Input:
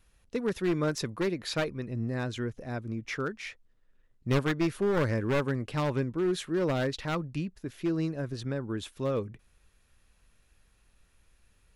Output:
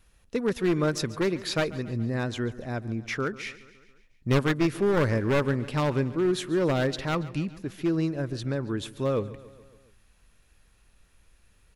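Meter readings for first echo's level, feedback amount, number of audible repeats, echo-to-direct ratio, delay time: -18.0 dB, 59%, 4, -16.0 dB, 0.14 s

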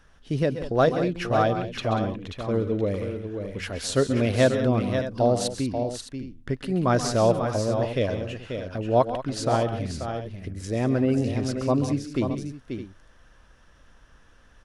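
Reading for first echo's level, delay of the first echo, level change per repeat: -11.5 dB, 0.132 s, no steady repeat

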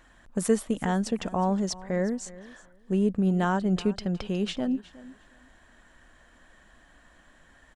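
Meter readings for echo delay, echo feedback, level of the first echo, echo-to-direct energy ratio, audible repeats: 0.364 s, 17%, -19.0 dB, -19.0 dB, 2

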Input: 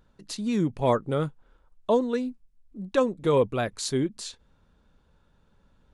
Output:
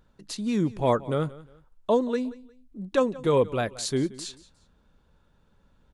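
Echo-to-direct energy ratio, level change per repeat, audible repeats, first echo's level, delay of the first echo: -19.0 dB, -10.5 dB, 2, -19.5 dB, 0.178 s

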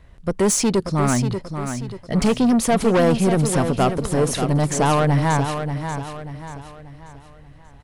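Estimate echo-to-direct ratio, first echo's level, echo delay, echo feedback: -7.0 dB, -8.0 dB, 0.586 s, 41%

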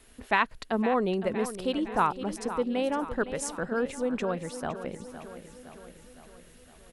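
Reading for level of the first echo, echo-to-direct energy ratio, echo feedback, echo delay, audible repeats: -12.0 dB, -10.0 dB, 58%, 0.512 s, 5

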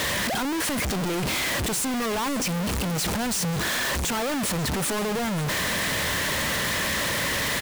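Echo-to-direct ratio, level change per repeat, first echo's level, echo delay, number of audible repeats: -16.5 dB, -16.0 dB, -16.5 dB, 0.54 s, 1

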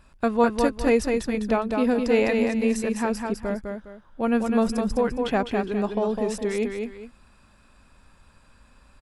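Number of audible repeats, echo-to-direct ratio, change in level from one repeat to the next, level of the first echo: 2, -4.0 dB, -10.5 dB, -4.5 dB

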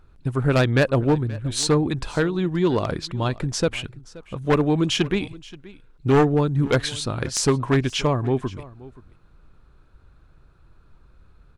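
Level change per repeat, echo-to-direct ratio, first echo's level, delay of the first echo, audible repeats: no steady repeat, -20.0 dB, -20.0 dB, 0.527 s, 1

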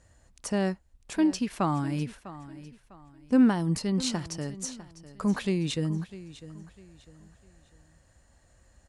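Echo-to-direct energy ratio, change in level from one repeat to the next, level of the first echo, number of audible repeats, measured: -15.5 dB, -9.5 dB, -16.0 dB, 2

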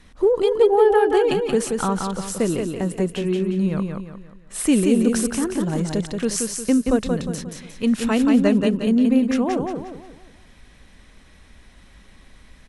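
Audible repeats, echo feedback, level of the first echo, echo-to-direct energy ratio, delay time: 4, 39%, -4.5 dB, -4.0 dB, 0.178 s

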